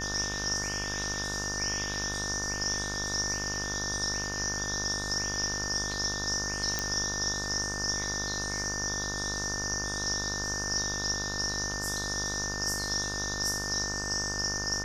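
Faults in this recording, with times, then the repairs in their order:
mains buzz 50 Hz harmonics 31 −38 dBFS
whistle 1,800 Hz −37 dBFS
0:06.79: click −13 dBFS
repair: click removal
hum removal 50 Hz, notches 31
notch filter 1,800 Hz, Q 30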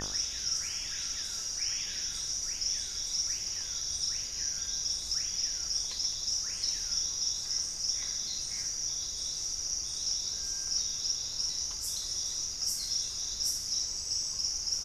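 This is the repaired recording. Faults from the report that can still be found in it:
none of them is left

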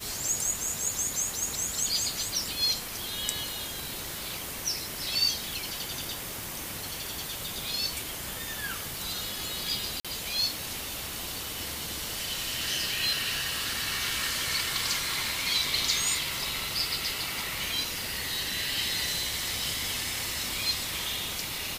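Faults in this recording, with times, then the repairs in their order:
surface crackle 32 per second −35 dBFS
0:10.00–0:10.05: drop-out 46 ms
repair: click removal
repair the gap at 0:10.00, 46 ms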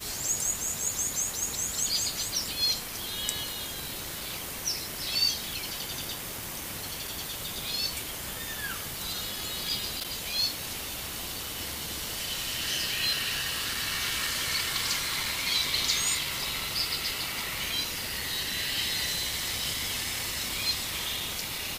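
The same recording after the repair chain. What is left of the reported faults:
none of them is left

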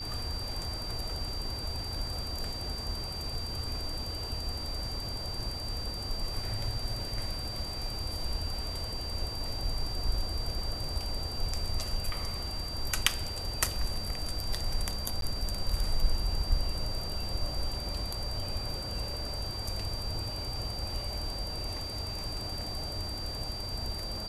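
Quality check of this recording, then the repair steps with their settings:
whistle 4,700 Hz −38 dBFS
0:15.21–0:15.22: drop-out 12 ms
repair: notch filter 4,700 Hz, Q 30
repair the gap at 0:15.21, 12 ms

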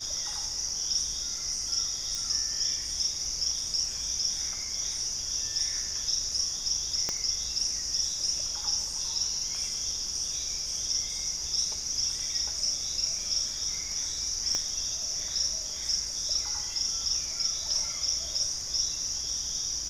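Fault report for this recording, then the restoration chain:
0:02.15: click
0:07.09: click −15 dBFS
0:14.55: click −17 dBFS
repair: click removal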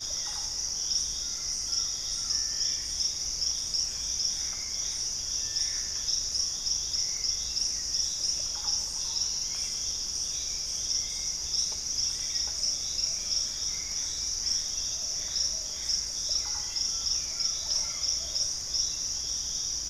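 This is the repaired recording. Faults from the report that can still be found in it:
0:07.09: click
0:14.55: click

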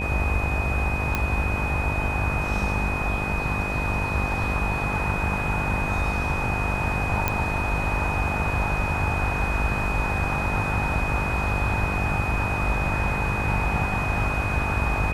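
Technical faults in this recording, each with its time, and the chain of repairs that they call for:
mains buzz 50 Hz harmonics 15 −30 dBFS
whistle 2,500 Hz −29 dBFS
0:01.15: click −9 dBFS
0:07.28: click −7 dBFS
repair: click removal
hum removal 50 Hz, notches 15
notch filter 2,500 Hz, Q 30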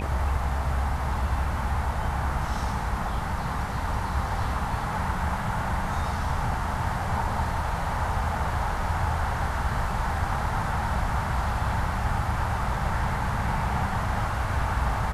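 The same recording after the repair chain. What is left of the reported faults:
none of them is left

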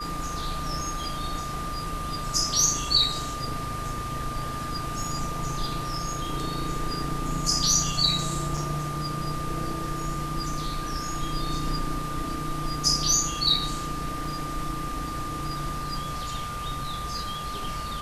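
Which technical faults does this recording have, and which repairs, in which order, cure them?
whistle 1,200 Hz −33 dBFS
0:08.57–0:08.58: drop-out 5.1 ms
0:14.25: drop-out 2.6 ms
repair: notch filter 1,200 Hz, Q 30
repair the gap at 0:08.57, 5.1 ms
repair the gap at 0:14.25, 2.6 ms

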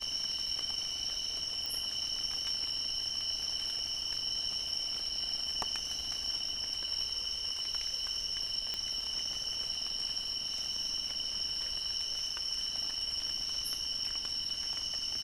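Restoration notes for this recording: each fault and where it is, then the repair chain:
0:01.66: click
0:08.74: click −20 dBFS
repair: click removal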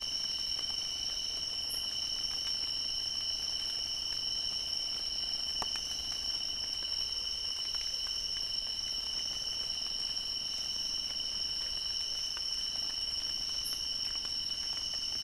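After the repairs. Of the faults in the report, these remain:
none of them is left

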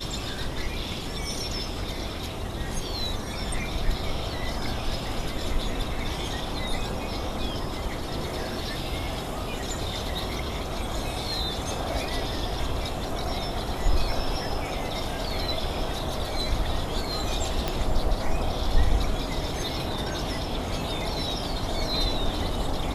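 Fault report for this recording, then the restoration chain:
0:17.68: click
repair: click removal

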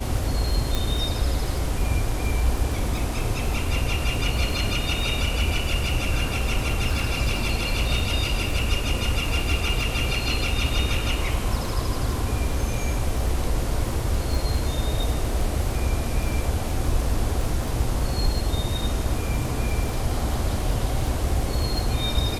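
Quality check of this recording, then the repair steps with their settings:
surface crackle 20 per second −27 dBFS
0:00.75: click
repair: click removal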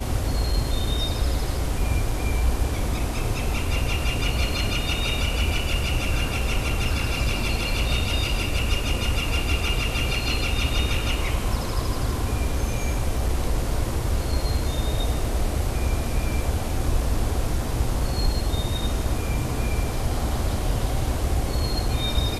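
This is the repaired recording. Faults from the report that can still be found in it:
none of them is left

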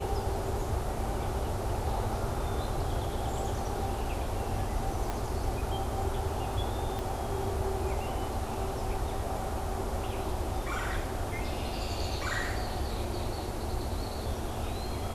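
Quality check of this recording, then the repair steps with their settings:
0:05.10: click −19 dBFS
0:06.99: click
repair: click removal

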